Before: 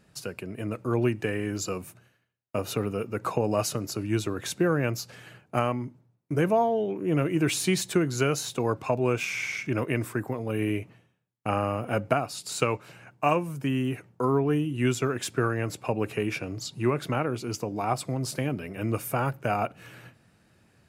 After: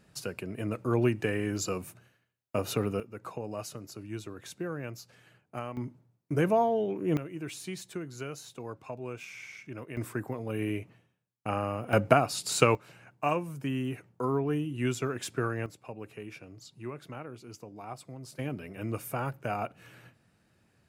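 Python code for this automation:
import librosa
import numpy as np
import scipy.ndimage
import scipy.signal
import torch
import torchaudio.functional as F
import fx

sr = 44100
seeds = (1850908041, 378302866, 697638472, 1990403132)

y = fx.gain(x, sr, db=fx.steps((0.0, -1.0), (3.0, -12.0), (5.77, -2.0), (7.17, -14.0), (9.97, -4.5), (11.93, 3.0), (12.75, -5.0), (15.66, -14.5), (18.39, -6.0)))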